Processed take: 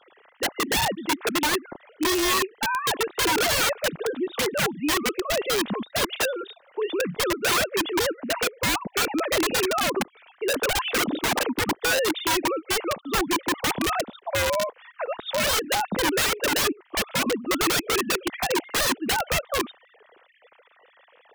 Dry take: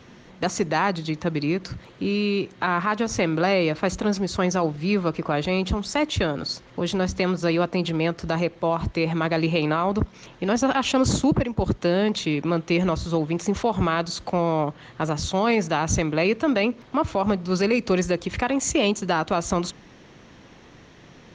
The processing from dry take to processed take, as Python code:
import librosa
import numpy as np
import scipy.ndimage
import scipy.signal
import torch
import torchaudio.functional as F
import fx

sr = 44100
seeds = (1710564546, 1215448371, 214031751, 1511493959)

y = fx.sine_speech(x, sr)
y = fx.low_shelf(y, sr, hz=430.0, db=-8.0, at=(12.47, 13.0), fade=0.02)
y = (np.mod(10.0 ** (18.0 / 20.0) * y + 1.0, 2.0) - 1.0) / 10.0 ** (18.0 / 20.0)